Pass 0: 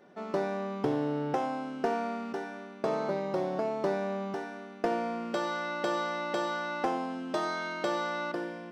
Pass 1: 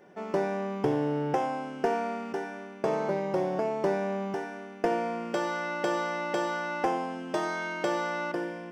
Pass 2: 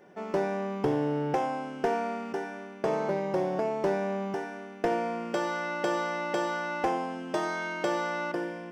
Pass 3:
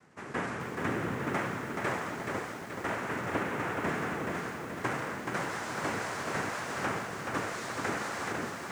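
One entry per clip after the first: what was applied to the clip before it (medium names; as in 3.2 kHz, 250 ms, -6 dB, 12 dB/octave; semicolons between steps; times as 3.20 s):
graphic EQ with 31 bands 250 Hz -7 dB, 630 Hz -3 dB, 1.25 kHz -6 dB, 4 kHz -11 dB; trim +4 dB
hard clipper -18.5 dBFS, distortion -27 dB
noise-vocoded speech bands 3; bit-crushed delay 427 ms, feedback 55%, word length 8-bit, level -4 dB; trim -5.5 dB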